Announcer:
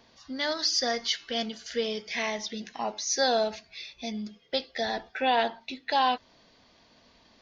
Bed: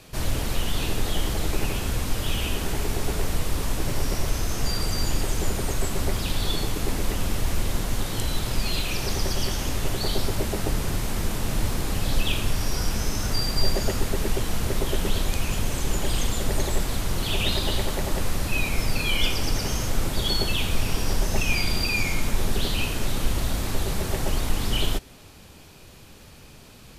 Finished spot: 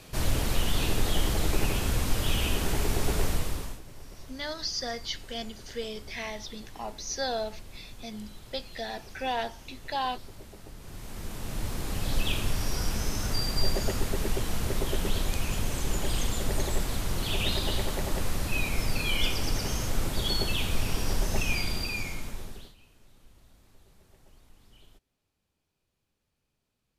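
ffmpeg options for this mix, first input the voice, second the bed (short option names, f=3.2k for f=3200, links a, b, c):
-filter_complex "[0:a]adelay=4000,volume=-6dB[a];[1:a]volume=16dB,afade=t=out:st=3.24:d=0.57:silence=0.1,afade=t=in:st=10.78:d=1.48:silence=0.141254,afade=t=out:st=21.38:d=1.37:silence=0.0354813[b];[a][b]amix=inputs=2:normalize=0"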